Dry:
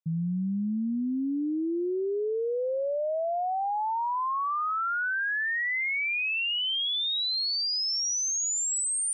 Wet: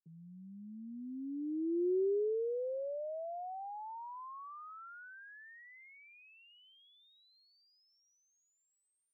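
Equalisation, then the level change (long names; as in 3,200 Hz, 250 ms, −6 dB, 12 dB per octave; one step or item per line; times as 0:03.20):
four-pole ladder band-pass 420 Hz, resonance 60%
0.0 dB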